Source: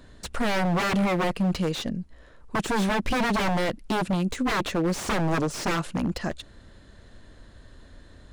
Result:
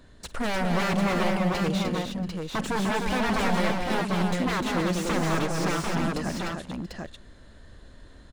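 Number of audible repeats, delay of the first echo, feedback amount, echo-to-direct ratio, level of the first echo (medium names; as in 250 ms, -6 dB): 5, 51 ms, no regular repeats, 0.0 dB, -18.0 dB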